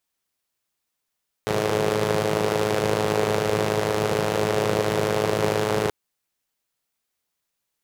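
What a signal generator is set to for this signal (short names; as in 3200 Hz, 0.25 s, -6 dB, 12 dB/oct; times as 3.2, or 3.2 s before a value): four-cylinder engine model, steady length 4.43 s, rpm 3200, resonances 160/420 Hz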